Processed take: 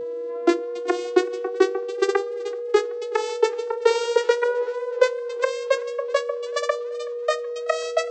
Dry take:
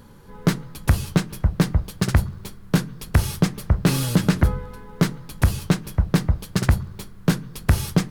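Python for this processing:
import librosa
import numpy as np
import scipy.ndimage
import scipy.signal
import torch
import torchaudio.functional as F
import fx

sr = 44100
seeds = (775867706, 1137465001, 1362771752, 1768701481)

y = fx.vocoder_glide(x, sr, note=64, semitones=12)
y = y + 10.0 ** (-27.0 / 20.0) * np.sin(2.0 * np.pi * 480.0 * np.arange(len(y)) / sr)
y = fx.echo_warbled(y, sr, ms=378, feedback_pct=62, rate_hz=2.8, cents=79, wet_db=-21.5)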